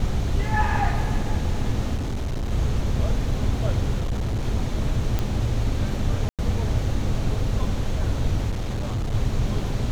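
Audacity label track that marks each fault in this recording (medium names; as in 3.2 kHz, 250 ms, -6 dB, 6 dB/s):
1.950000	2.520000	clipped -23 dBFS
4.000000	4.440000	clipped -21 dBFS
5.190000	5.190000	pop -11 dBFS
6.290000	6.390000	dropout 97 ms
8.490000	9.150000	clipped -22.5 dBFS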